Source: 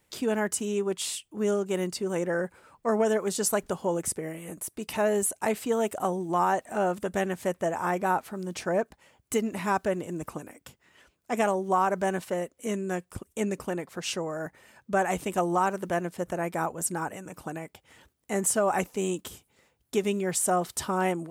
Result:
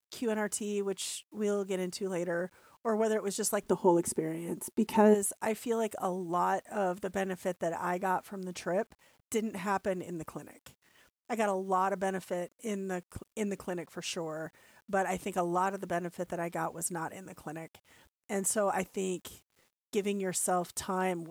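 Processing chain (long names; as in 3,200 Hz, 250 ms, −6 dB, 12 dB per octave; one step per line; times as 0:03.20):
0:03.65–0:05.13: hollow resonant body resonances 240/360/880 Hz, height 12 dB → 16 dB, ringing for 45 ms
bit reduction 10 bits
level −5 dB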